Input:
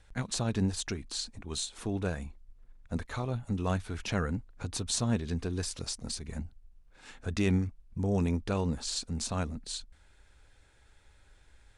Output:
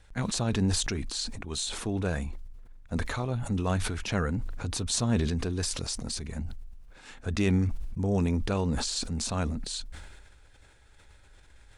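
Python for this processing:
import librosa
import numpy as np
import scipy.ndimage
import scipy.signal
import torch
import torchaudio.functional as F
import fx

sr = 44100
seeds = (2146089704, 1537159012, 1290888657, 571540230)

y = fx.sustainer(x, sr, db_per_s=34.0)
y = y * 10.0 ** (2.0 / 20.0)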